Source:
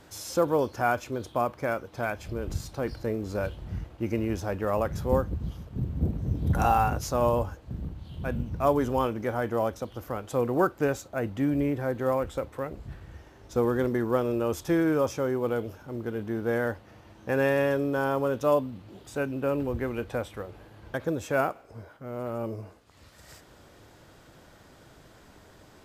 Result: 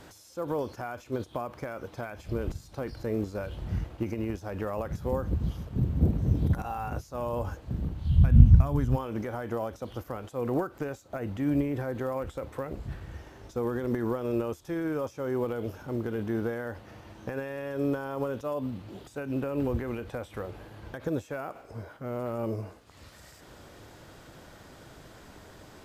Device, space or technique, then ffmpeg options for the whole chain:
de-esser from a sidechain: -filter_complex "[0:a]asplit=2[s0][s1];[s1]highpass=4200,apad=whole_len=1139554[s2];[s0][s2]sidechaincompress=threshold=0.00178:ratio=10:attack=1.2:release=95,asplit=3[s3][s4][s5];[s3]afade=t=out:st=8.04:d=0.02[s6];[s4]asubboost=boost=9:cutoff=140,afade=t=in:st=8.04:d=0.02,afade=t=out:st=8.95:d=0.02[s7];[s5]afade=t=in:st=8.95:d=0.02[s8];[s6][s7][s8]amix=inputs=3:normalize=0,volume=1.5"

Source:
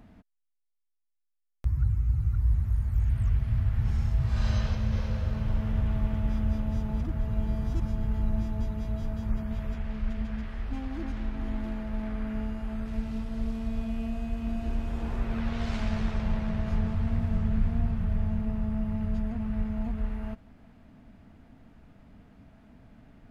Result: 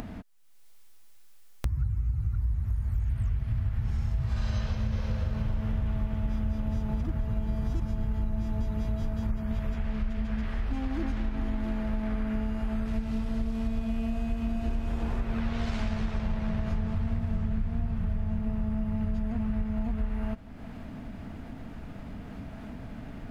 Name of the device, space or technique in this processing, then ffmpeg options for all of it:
upward and downward compression: -af "acompressor=mode=upward:threshold=0.0126:ratio=2.5,acompressor=threshold=0.0251:ratio=6,volume=2.11"

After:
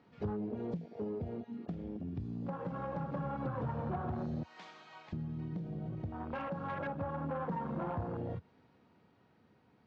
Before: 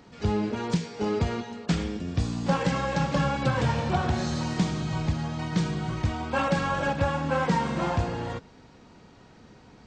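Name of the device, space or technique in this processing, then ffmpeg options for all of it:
AM radio: -filter_complex "[0:a]asettb=1/sr,asplit=3[s0][s1][s2];[s0]atrim=end=4.434[s3];[s1]atrim=start=4.43:end=5.13,asetpts=PTS-STARTPTS,afade=t=in:d=0.004:c=qsin,afade=t=out:st=0.696:d=0.004:c=qsin,highpass=780[s4];[s2]atrim=start=5.126[s5];[s3][s4]acrossfade=d=0.004:c1=hsin:c2=qsin[s6];[s6][s5]acrossfade=d=0.004:c1=qsin:c2=hsin,afwtdn=0.0398,highpass=110,lowpass=3200,acompressor=threshold=0.0112:ratio=6,asoftclip=type=tanh:threshold=0.0237,tremolo=f=0.26:d=0.3,equalizer=f=82:w=1.5:g=4,volume=1.68"

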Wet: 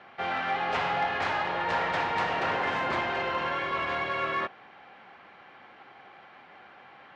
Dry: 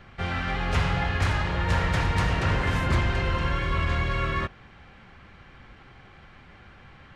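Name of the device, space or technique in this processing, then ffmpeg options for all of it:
intercom: -af "highpass=340,lowpass=3900,equalizer=f=770:t=o:w=0.6:g=7,asoftclip=type=tanh:threshold=0.126"

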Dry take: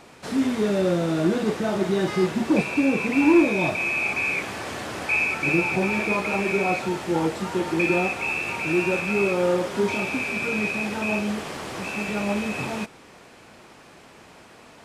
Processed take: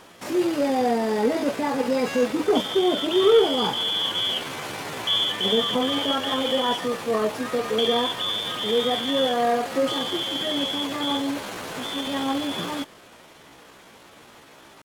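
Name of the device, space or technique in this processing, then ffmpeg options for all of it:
chipmunk voice: -af "asetrate=58866,aresample=44100,atempo=0.749154"

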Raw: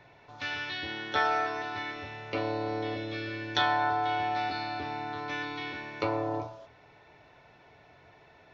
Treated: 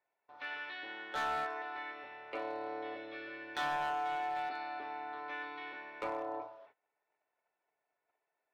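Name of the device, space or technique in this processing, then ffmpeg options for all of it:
walkie-talkie: -af "highpass=470,lowpass=2300,asoftclip=type=hard:threshold=0.0501,agate=range=0.0794:threshold=0.00178:ratio=16:detection=peak,volume=0.562"

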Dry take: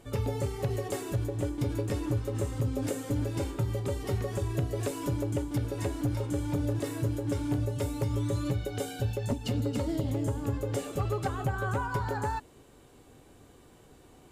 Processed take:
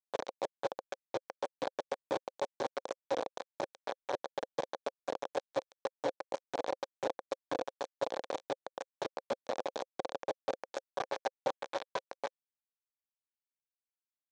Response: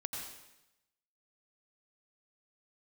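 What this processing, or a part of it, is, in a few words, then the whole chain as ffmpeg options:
hand-held game console: -filter_complex "[0:a]asettb=1/sr,asplit=3[s0][s1][s2];[s0]atrim=end=3.854[s3];[s1]atrim=start=3.85:end=4.55,asetpts=PTS-STARTPTS,afade=t=in:d=0.004:c=qsin,afade=t=out:st=0.696:d=0.004:c=qsin,highshelf=f=1800:t=q:w=3:g=-8[s4];[s2]atrim=start=4.546[s5];[s3][s4]acrossfade=d=0.004:c1=hsin:c2=qsin[s6];[s6][s5]acrossfade=d=0.004:c1=qsin:c2=hsin,acrusher=bits=3:mix=0:aa=0.000001,highpass=490,equalizer=f=530:t=q:w=4:g=9,equalizer=f=780:t=q:w=4:g=3,equalizer=f=1300:t=q:w=4:g=-7,equalizer=f=2000:t=q:w=4:g=-7,equalizer=f=2800:t=q:w=4:g=-10,equalizer=f=4800:t=q:w=4:g=-7,lowpass=f=5200:w=0.5412,lowpass=f=5200:w=1.3066,volume=0.631"

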